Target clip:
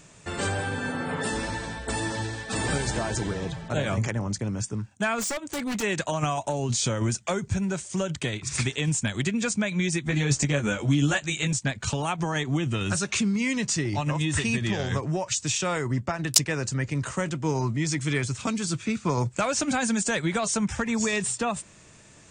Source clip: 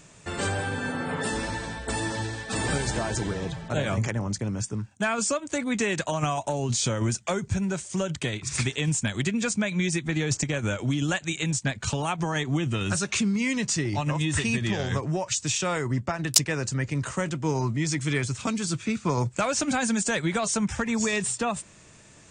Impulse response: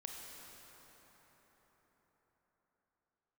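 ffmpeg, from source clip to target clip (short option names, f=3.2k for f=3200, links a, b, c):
-filter_complex "[0:a]asplit=3[a][b][c];[a]afade=t=out:st=5.18:d=0.02[d];[b]aeval=exprs='0.0596*(abs(mod(val(0)/0.0596+3,4)-2)-1)':c=same,afade=t=in:st=5.18:d=0.02,afade=t=out:st=5.82:d=0.02[e];[c]afade=t=in:st=5.82:d=0.02[f];[d][e][f]amix=inputs=3:normalize=0,asettb=1/sr,asplit=3[g][h][i];[g]atrim=end=10.054[j];[h]atrim=start=10.05:end=11.53,asetpts=PTS-STARTPTS,afade=t=in:d=0.004:c=qsin,afade=t=out:st=1.476:d=0.004:c=qsin,asplit=2[k][l];[l]adelay=14,volume=-2dB[m];[k][m]amix=inputs=2:normalize=0,atrim=end_sample=65268[n];[i]atrim=start=11.526[o];[j][n]acrossfade=d=0.004:c1=hsin:c2=qsin[p];[p][o]acrossfade=d=0.004:c1=qsin:c2=hsin"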